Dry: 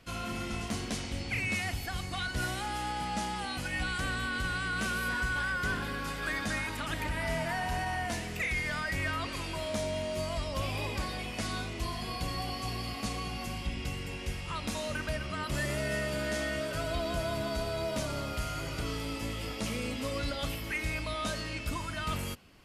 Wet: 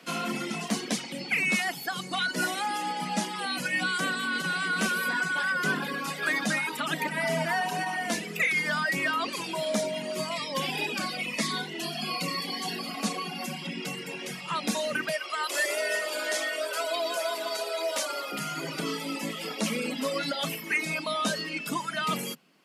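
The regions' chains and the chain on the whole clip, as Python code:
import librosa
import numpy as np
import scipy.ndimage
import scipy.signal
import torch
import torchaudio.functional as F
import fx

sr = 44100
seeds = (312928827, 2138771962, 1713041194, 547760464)

y = fx.chain(x, sr, fx.peak_eq(hz=2300.0, db=5.0, octaves=1.6),
    fx.notch_cascade(direction='falling', hz=1.0), at=(10.31, 12.79))
y = fx.chain(y, sr, fx.highpass(hz=400.0, slope=24),
    fx.peak_eq(hz=13000.0, db=3.0, octaves=2.5), at=(15.09, 18.32))
y = fx.dereverb_blind(y, sr, rt60_s=1.8)
y = scipy.signal.sosfilt(scipy.signal.butter(16, 150.0, 'highpass', fs=sr, output='sos'), y)
y = F.gain(torch.from_numpy(y), 8.0).numpy()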